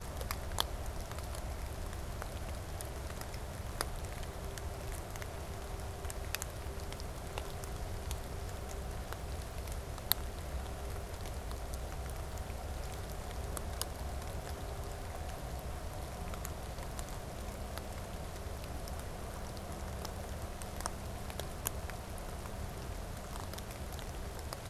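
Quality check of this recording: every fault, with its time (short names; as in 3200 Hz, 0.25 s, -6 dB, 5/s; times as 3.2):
crackle 19/s -46 dBFS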